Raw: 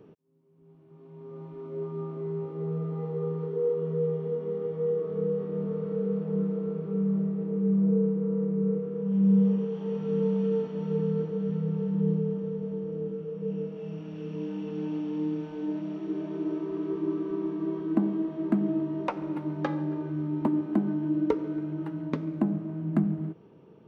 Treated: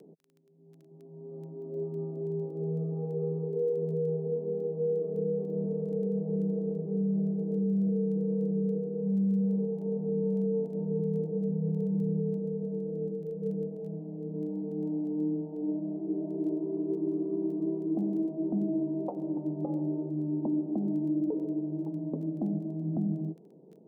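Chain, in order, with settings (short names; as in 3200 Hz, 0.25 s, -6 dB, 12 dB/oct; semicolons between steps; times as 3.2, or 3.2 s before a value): elliptic band-pass 160–740 Hz, stop band 40 dB; limiter -22.5 dBFS, peak gain reduction 10.5 dB; crackle 10/s -48 dBFS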